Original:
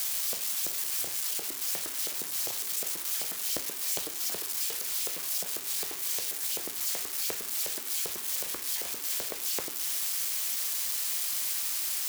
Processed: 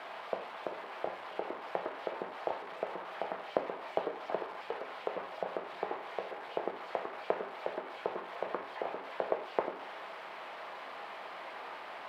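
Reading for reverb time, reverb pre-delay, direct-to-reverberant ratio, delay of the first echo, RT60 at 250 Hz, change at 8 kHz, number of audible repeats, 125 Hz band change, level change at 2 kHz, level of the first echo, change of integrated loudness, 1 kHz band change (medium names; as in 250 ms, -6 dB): 0.50 s, 3 ms, 8.0 dB, no echo, 0.45 s, under -40 dB, no echo, -2.0 dB, -2.0 dB, no echo, -10.5 dB, +9.5 dB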